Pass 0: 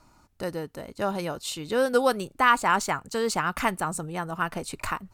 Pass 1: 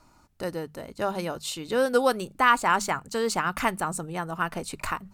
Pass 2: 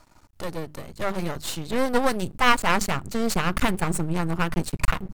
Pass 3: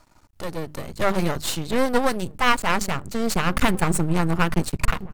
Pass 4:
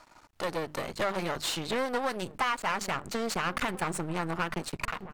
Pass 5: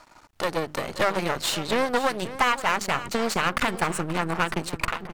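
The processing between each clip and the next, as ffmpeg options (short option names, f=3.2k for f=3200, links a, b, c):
-af "bandreject=f=50:t=h:w=6,bandreject=f=100:t=h:w=6,bandreject=f=150:t=h:w=6,bandreject=f=200:t=h:w=6"
-af "asubboost=boost=7.5:cutoff=160,aeval=exprs='max(val(0),0)':c=same,volume=6dB"
-filter_complex "[0:a]dynaudnorm=f=290:g=5:m=9dB,asplit=2[a][b];[b]adelay=1691,volume=-20dB,highshelf=f=4k:g=-38[c];[a][c]amix=inputs=2:normalize=0,volume=-1dB"
-filter_complex "[0:a]acompressor=threshold=-24dB:ratio=6,asplit=2[a][b];[b]highpass=f=720:p=1,volume=17dB,asoftclip=type=tanh:threshold=-9dB[c];[a][c]amix=inputs=2:normalize=0,lowpass=f=3.6k:p=1,volume=-6dB,volume=-6dB"
-filter_complex "[0:a]asplit=2[a][b];[b]acrusher=bits=3:mix=0:aa=0.5,volume=-6.5dB[c];[a][c]amix=inputs=2:normalize=0,aecho=1:1:530:0.188,volume=4dB"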